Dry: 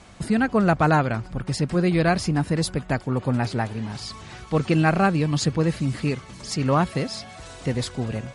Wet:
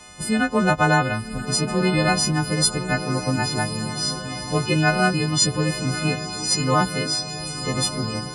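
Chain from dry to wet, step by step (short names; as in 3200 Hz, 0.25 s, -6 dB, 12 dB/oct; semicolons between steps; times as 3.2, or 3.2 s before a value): frequency quantiser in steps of 3 st; diffused feedback echo 1.091 s, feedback 59%, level -10.5 dB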